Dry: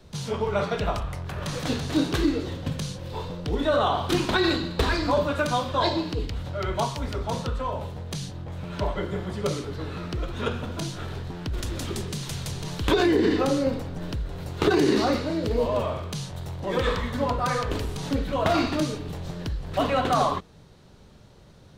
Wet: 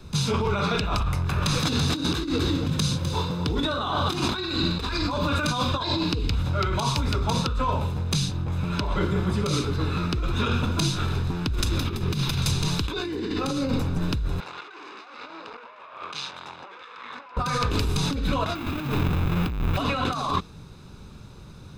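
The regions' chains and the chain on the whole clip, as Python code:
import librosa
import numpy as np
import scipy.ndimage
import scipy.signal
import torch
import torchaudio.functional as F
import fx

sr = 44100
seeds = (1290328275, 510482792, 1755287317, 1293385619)

y = fx.chain(x, sr, fx.highpass(hz=57.0, slope=12),
    fx.peak_eq(hz=2500.0, db=-4.0, octaves=0.21),
    fx.echo_single(ms=254, db=-9.5), at=(1.61, 4.37))
y = fx.chain(y, sr, fx.peak_eq(hz=7800.0, db=-12.0, octaves=1.1),
    fx.over_compress(threshold_db=-33.0, ratio=-0.5), at=(11.78, 12.42))
y = fx.chain(y, sr, fx.tube_stage(drive_db=30.0, bias=0.5),
    fx.bandpass_edges(low_hz=760.0, high_hz=3300.0),
    fx.over_compress(threshold_db=-47.0, ratio=-1.0), at=(14.4, 17.37))
y = fx.chain(y, sr, fx.halfwave_hold(),
    fx.band_shelf(hz=7200.0, db=-12.5, octaves=1.7), at=(18.55, 19.77))
y = fx.dynamic_eq(y, sr, hz=4100.0, q=1.1, threshold_db=-46.0, ratio=4.0, max_db=5)
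y = y + 0.51 * np.pad(y, (int(0.8 * sr / 1000.0), 0))[:len(y)]
y = fx.over_compress(y, sr, threshold_db=-27.0, ratio=-1.0)
y = F.gain(torch.from_numpy(y), 2.5).numpy()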